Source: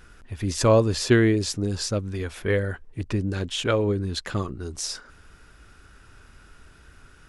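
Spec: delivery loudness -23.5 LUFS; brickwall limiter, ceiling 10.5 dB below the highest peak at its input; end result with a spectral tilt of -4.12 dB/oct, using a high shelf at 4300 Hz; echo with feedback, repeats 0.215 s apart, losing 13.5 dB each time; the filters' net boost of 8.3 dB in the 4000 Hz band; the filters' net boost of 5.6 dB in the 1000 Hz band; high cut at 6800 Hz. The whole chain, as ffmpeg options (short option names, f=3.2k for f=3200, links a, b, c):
-af "lowpass=6.8k,equalizer=f=1k:t=o:g=6,equalizer=f=4k:t=o:g=7,highshelf=f=4.3k:g=6.5,alimiter=limit=-14.5dB:level=0:latency=1,aecho=1:1:215|430:0.211|0.0444,volume=1.5dB"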